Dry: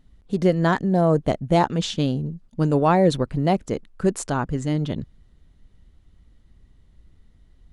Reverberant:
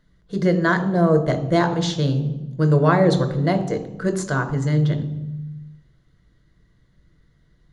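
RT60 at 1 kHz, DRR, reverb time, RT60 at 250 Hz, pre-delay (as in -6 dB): 0.95 s, 8.0 dB, 1.1 s, 1.6 s, 3 ms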